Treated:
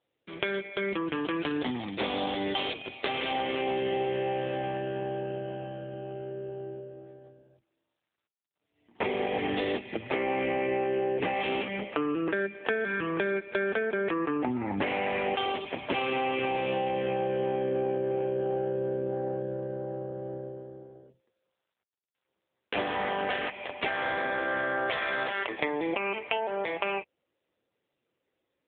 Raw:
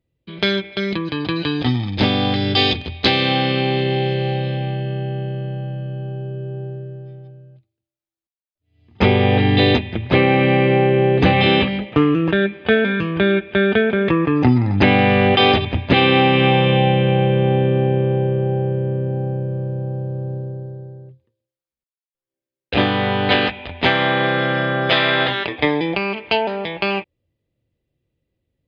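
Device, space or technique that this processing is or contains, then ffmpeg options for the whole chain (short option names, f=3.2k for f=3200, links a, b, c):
voicemail: -filter_complex "[0:a]asettb=1/sr,asplit=3[a][b][c];[a]atrim=end=9.314[d];[b]atrim=start=9.31:end=10.52,asetpts=PTS-STARTPTS,afade=t=in:d=0.004:c=qsin,afade=t=out:st=1.206:d=0.004:c=qsin,lowshelf=f=130:g=4[e];[c]atrim=start=10.516[f];[d][e]acrossfade=d=0.004:c1=hsin:c2=qsin[g];[g][f]acrossfade=d=0.004:c1=qsin:c2=hsin,highpass=370,lowpass=3.1k,acompressor=threshold=-25dB:ratio=8" -ar 8000 -c:a libopencore_amrnb -b:a 7950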